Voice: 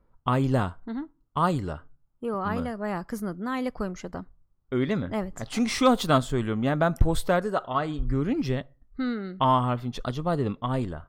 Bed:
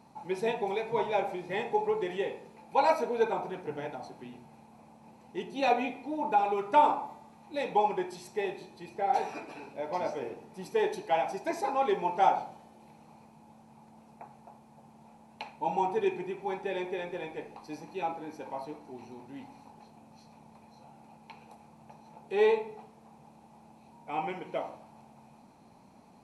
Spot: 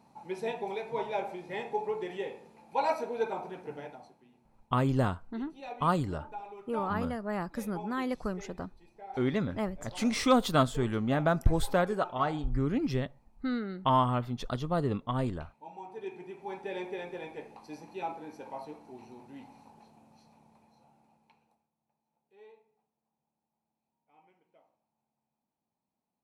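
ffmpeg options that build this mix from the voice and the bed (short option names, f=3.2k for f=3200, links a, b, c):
-filter_complex "[0:a]adelay=4450,volume=-3.5dB[a];[1:a]volume=9.5dB,afade=t=out:st=3.73:d=0.47:silence=0.237137,afade=t=in:st=15.85:d=0.94:silence=0.211349,afade=t=out:st=19.67:d=2.02:silence=0.0398107[b];[a][b]amix=inputs=2:normalize=0"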